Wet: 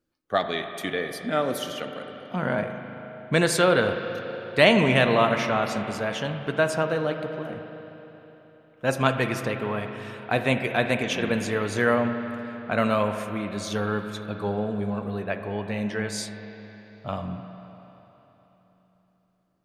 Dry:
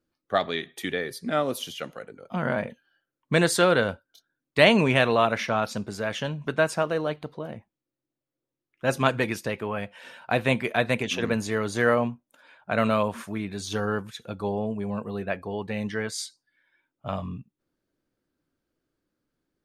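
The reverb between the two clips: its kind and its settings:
spring reverb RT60 3.7 s, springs 38/49 ms, chirp 50 ms, DRR 6.5 dB

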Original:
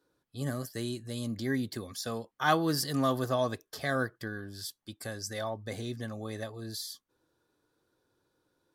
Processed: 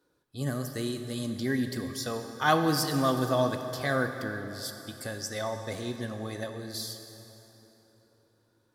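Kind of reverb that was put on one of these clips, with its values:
dense smooth reverb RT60 3.6 s, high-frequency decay 0.7×, DRR 6.5 dB
level +2 dB

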